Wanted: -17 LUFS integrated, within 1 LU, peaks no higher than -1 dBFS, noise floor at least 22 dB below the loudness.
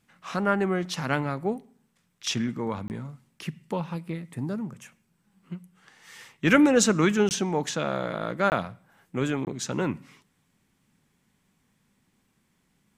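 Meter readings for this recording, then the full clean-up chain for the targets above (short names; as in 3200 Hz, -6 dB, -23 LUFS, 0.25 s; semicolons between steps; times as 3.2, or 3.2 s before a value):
dropouts 4; longest dropout 19 ms; loudness -27.0 LUFS; peak -8.0 dBFS; loudness target -17.0 LUFS
-> interpolate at 2.88/7.29/8.5/9.45, 19 ms; gain +10 dB; limiter -1 dBFS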